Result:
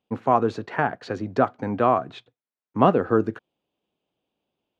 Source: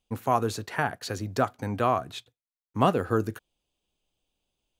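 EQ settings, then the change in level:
high-pass filter 170 Hz 12 dB per octave
head-to-tape spacing loss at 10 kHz 32 dB
+7.5 dB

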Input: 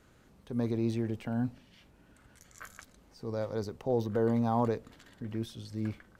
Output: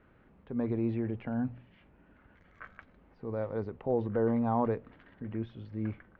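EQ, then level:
low-pass filter 2,500 Hz 24 dB per octave
mains-hum notches 60/120 Hz
0.0 dB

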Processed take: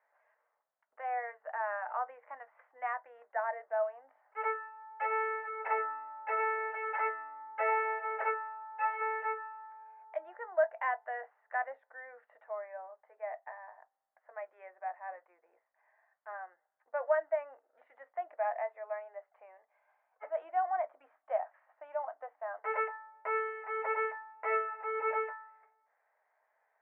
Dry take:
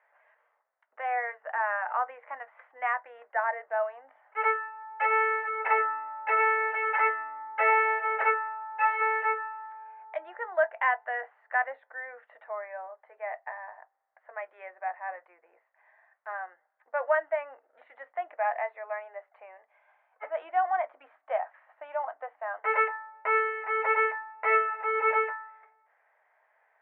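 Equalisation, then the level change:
dynamic equaliser 640 Hz, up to +4 dB, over −42 dBFS, Q 4.2
low-pass filter 1,400 Hz 6 dB per octave
−5.5 dB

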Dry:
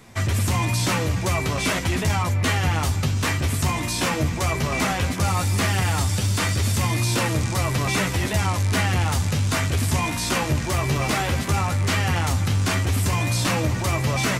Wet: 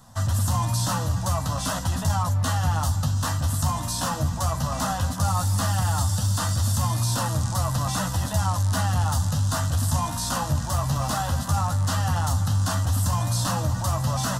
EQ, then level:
phaser with its sweep stopped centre 940 Hz, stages 4
0.0 dB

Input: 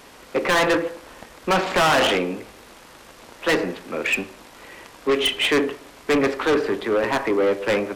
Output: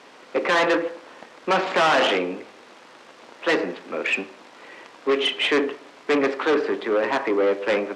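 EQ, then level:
high-pass filter 250 Hz 12 dB per octave
high-frequency loss of the air 91 metres
0.0 dB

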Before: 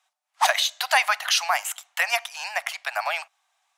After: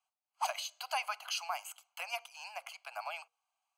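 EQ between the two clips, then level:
moving average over 24 samples
first difference
mains-hum notches 60/120/180/240/300/360/420/480/540 Hz
+8.5 dB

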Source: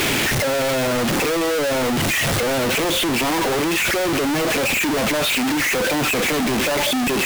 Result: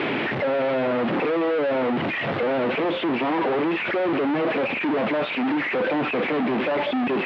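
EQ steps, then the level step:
band-pass filter 210–3,400 Hz
high-frequency loss of the air 420 metres
parametric band 1,500 Hz −2 dB
0.0 dB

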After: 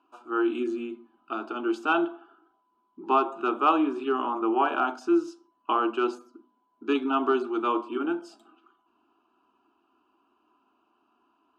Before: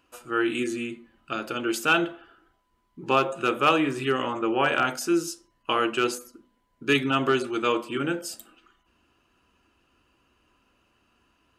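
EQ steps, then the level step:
high-pass filter 300 Hz 12 dB per octave
low-pass filter 2,000 Hz 12 dB per octave
phaser with its sweep stopped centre 520 Hz, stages 6
+3.5 dB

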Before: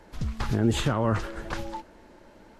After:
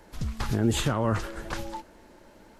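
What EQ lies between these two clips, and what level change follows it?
high-shelf EQ 7,200 Hz +9.5 dB
−1.0 dB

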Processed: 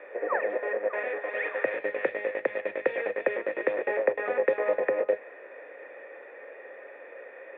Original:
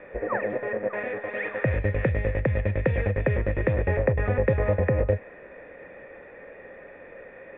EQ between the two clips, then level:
high-pass filter 370 Hz 24 dB per octave
0.0 dB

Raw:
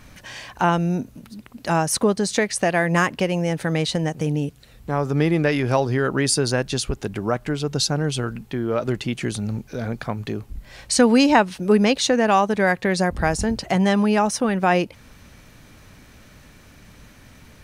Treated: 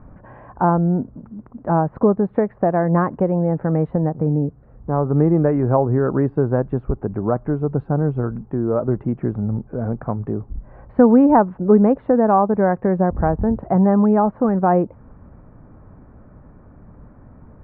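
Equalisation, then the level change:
low-pass filter 1,200 Hz 24 dB per octave
high-frequency loss of the air 480 metres
+4.5 dB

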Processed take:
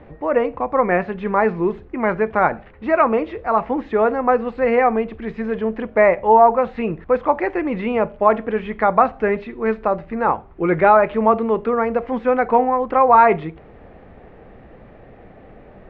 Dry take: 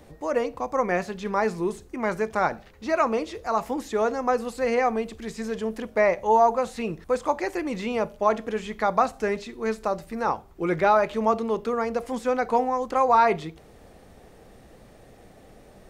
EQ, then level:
low-pass filter 2,500 Hz 24 dB per octave
+7.0 dB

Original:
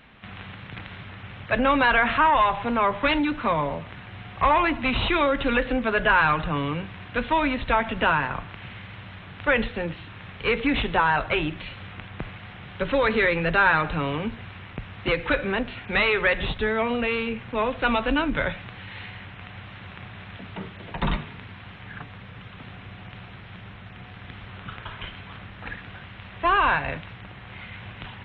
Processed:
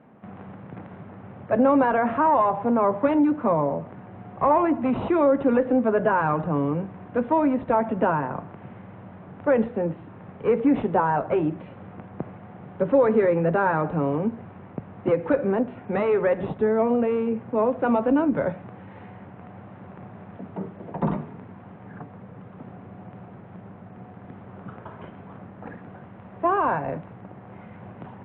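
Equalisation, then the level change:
flat-topped band-pass 350 Hz, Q 0.54
+5.0 dB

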